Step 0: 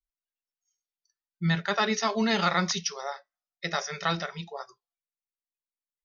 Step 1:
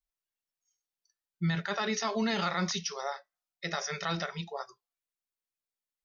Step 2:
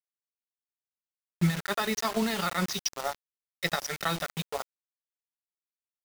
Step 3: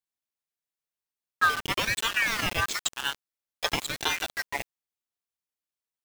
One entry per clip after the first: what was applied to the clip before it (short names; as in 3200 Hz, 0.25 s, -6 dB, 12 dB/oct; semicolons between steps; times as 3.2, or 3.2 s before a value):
limiter -22 dBFS, peak gain reduction 8.5 dB
transient shaper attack +8 dB, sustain -9 dB; bit-crush 6-bit
rattling part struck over -25 dBFS, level -25 dBFS; ring modulator with a swept carrier 1800 Hz, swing 25%, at 0.97 Hz; gain +4.5 dB